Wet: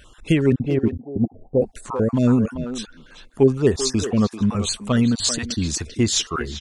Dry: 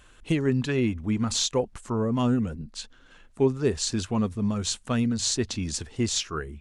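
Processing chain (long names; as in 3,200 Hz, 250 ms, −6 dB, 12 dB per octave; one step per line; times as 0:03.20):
time-frequency cells dropped at random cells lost 32%
0:00.52–0:01.62: Chebyshev low-pass filter 770 Hz, order 6
far-end echo of a speakerphone 390 ms, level −8 dB
level +7 dB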